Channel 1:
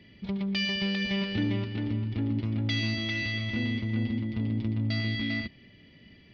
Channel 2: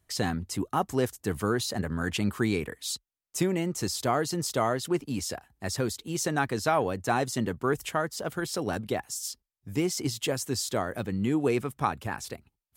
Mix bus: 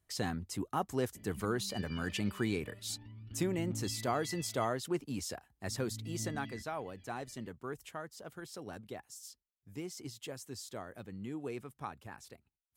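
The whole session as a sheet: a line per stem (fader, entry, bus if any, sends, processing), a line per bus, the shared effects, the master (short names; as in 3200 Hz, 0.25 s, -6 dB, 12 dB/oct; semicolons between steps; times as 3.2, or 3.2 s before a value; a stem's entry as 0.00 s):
-2.0 dB, 1.15 s, muted 4.65–5.67, no send, compressor 3:1, threshold -41 dBFS, peak gain reduction 12.5 dB; phaser 0.39 Hz, delay 2.1 ms, feedback 78%; auto duck -11 dB, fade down 1.55 s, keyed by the second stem
6.01 s -7 dB -> 6.61 s -15 dB, 0.00 s, no send, dry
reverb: off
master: dry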